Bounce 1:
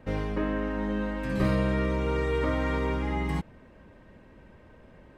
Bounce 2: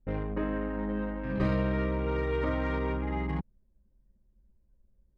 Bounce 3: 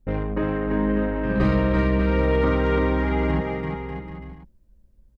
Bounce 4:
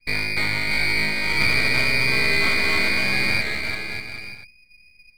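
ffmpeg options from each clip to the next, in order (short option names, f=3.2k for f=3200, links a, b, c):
-af "anlmdn=10,volume=-2.5dB"
-af "aecho=1:1:340|595|786.2|929.7|1037:0.631|0.398|0.251|0.158|0.1,volume=7dB"
-af "asoftclip=type=tanh:threshold=-14dB,lowpass=f=2.1k:t=q:w=0.5098,lowpass=f=2.1k:t=q:w=0.6013,lowpass=f=2.1k:t=q:w=0.9,lowpass=f=2.1k:t=q:w=2.563,afreqshift=-2500,aeval=exprs='max(val(0),0)':c=same,volume=5.5dB"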